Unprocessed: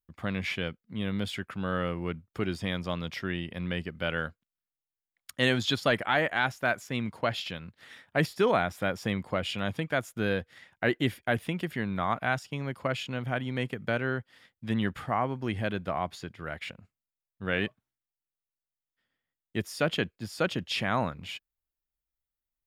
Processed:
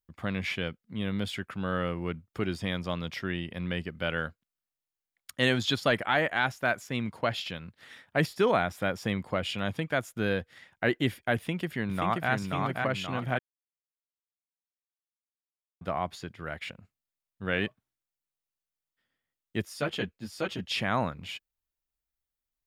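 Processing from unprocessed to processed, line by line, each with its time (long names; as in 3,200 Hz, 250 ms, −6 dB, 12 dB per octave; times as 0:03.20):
0:11.36–0:12.31: delay throw 530 ms, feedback 50%, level −3 dB
0:13.39–0:15.81: silence
0:19.65–0:20.66: string-ensemble chorus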